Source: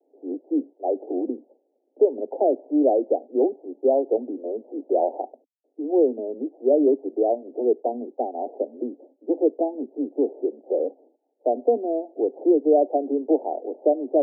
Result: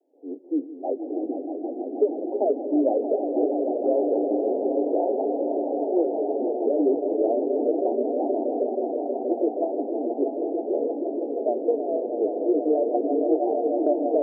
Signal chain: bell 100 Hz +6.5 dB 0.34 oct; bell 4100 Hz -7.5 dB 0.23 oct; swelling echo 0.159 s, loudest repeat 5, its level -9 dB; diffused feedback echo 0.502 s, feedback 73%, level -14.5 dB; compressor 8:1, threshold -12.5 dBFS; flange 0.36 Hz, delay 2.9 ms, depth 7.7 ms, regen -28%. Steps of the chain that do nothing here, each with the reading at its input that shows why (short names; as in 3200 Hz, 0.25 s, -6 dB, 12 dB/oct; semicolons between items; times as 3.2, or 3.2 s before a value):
bell 100 Hz: input band starts at 200 Hz; bell 4100 Hz: input band ends at 910 Hz